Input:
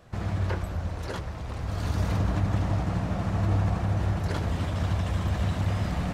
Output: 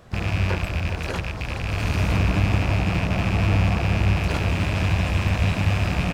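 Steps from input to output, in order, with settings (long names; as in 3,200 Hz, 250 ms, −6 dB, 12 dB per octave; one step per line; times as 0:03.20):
loose part that buzzes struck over −32 dBFS, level −23 dBFS
pitch-shifted copies added −7 semitones −12 dB, +12 semitones −16 dB
single-tap delay 412 ms −11 dB
level +4.5 dB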